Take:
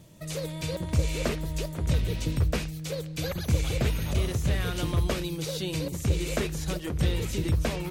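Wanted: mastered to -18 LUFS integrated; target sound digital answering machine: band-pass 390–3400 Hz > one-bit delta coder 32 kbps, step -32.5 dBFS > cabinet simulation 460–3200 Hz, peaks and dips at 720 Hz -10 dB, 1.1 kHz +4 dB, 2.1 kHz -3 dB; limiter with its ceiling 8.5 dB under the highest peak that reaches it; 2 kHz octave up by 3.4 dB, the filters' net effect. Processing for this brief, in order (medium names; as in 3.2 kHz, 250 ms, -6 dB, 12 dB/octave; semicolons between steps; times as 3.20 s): peaking EQ 2 kHz +7 dB; peak limiter -19.5 dBFS; band-pass 390–3400 Hz; one-bit delta coder 32 kbps, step -32.5 dBFS; cabinet simulation 460–3200 Hz, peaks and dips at 720 Hz -10 dB, 1.1 kHz +4 dB, 2.1 kHz -3 dB; trim +20 dB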